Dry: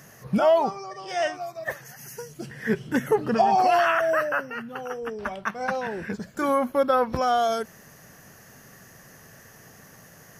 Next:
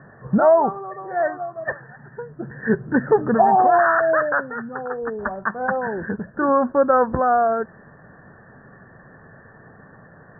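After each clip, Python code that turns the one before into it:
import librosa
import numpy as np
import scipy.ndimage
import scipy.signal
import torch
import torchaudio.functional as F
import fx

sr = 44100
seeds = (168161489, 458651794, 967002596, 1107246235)

y = scipy.signal.sosfilt(scipy.signal.cheby1(8, 1.0, 1800.0, 'lowpass', fs=sr, output='sos'), x)
y = F.gain(torch.from_numpy(y), 5.5).numpy()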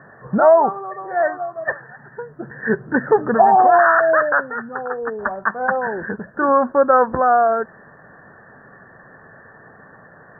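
y = fx.low_shelf(x, sr, hz=290.0, db=-10.0)
y = F.gain(torch.from_numpy(y), 4.5).numpy()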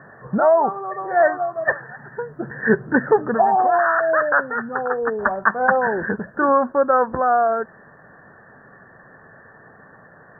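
y = fx.rider(x, sr, range_db=4, speed_s=0.5)
y = F.gain(torch.from_numpy(y), -1.0).numpy()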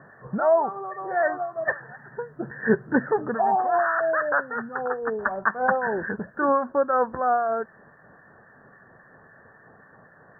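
y = fx.harmonic_tremolo(x, sr, hz=3.7, depth_pct=50, crossover_hz=1300.0)
y = F.gain(torch.from_numpy(y), -3.0).numpy()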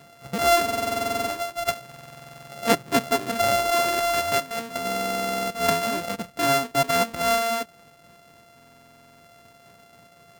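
y = np.r_[np.sort(x[:len(x) // 64 * 64].reshape(-1, 64), axis=1).ravel(), x[len(x) // 64 * 64:]]
y = fx.buffer_glitch(y, sr, at_s=(0.64, 1.87, 4.85, 8.56), block=2048, repeats=13)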